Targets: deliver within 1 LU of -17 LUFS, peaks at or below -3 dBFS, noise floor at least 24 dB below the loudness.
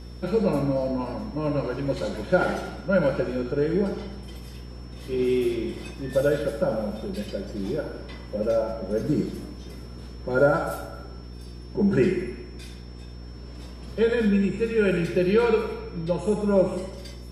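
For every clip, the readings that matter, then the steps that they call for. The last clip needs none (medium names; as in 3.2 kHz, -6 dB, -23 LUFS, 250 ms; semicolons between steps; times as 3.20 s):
hum 60 Hz; highest harmonic 480 Hz; hum level -38 dBFS; steady tone 5.4 kHz; tone level -54 dBFS; loudness -25.5 LUFS; peak level -7.5 dBFS; loudness target -17.0 LUFS
-> de-hum 60 Hz, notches 8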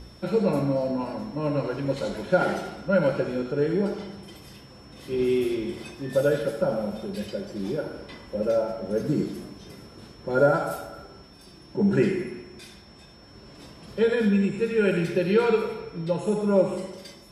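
hum not found; steady tone 5.4 kHz; tone level -54 dBFS
-> band-stop 5.4 kHz, Q 30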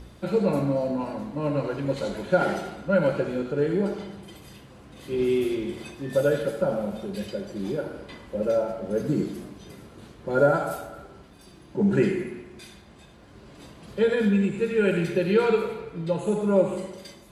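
steady tone not found; loudness -26.0 LUFS; peak level -7.5 dBFS; loudness target -17.0 LUFS
-> trim +9 dB; peak limiter -3 dBFS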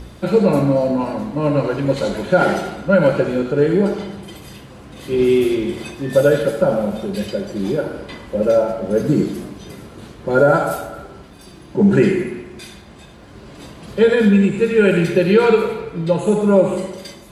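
loudness -17.0 LUFS; peak level -3.0 dBFS; noise floor -41 dBFS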